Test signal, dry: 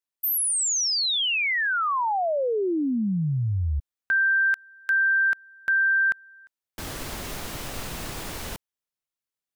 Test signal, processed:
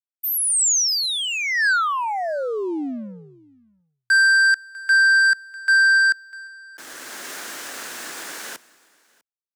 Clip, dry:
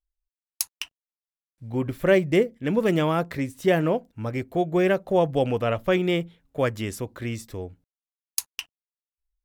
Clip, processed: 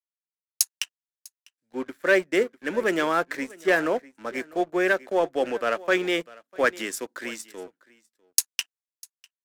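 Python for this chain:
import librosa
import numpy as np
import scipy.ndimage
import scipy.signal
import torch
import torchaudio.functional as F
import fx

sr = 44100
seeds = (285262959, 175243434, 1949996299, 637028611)

p1 = scipy.signal.sosfilt(scipy.signal.butter(4, 260.0, 'highpass', fs=sr, output='sos'), x)
p2 = fx.rider(p1, sr, range_db=4, speed_s=0.5)
p3 = p1 + (p2 * librosa.db_to_amplitude(3.0))
p4 = fx.peak_eq(p3, sr, hz=1600.0, db=11.0, octaves=0.64)
p5 = fx.leveller(p4, sr, passes=2)
p6 = fx.peak_eq(p5, sr, hz=7200.0, db=6.5, octaves=1.3)
p7 = p6 + fx.echo_single(p6, sr, ms=649, db=-19.0, dry=0)
p8 = fx.band_widen(p7, sr, depth_pct=40)
y = p8 * librosa.db_to_amplitude(-16.5)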